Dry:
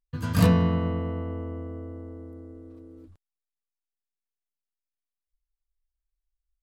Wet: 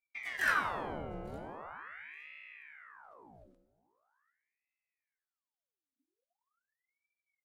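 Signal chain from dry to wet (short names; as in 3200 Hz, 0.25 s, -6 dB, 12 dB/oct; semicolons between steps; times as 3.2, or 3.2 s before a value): two-slope reverb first 0.72 s, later 2.2 s, from -24 dB, DRR 6.5 dB; varispeed -11%; on a send: feedback echo 0.863 s, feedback 18%, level -23 dB; on the sum: ring modulator with a swept carrier 1300 Hz, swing 80%, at 0.42 Hz; gain -8.5 dB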